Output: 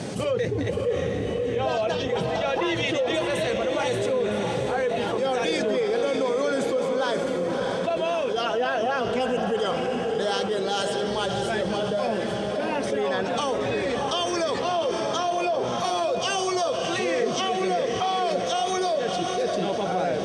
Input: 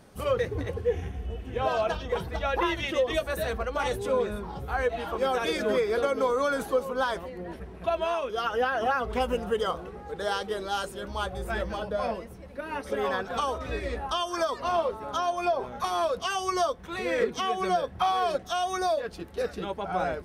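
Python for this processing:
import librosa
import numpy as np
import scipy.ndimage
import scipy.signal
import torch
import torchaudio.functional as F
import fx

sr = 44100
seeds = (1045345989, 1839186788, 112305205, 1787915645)

p1 = scipy.signal.sosfilt(scipy.signal.ellip(3, 1.0, 60, [120.0, 8000.0], 'bandpass', fs=sr, output='sos'), x)
p2 = fx.peak_eq(p1, sr, hz=1200.0, db=-10.0, octaves=1.1)
p3 = p2 + fx.echo_diffused(p2, sr, ms=629, feedback_pct=49, wet_db=-7.5, dry=0)
y = fx.env_flatten(p3, sr, amount_pct=70)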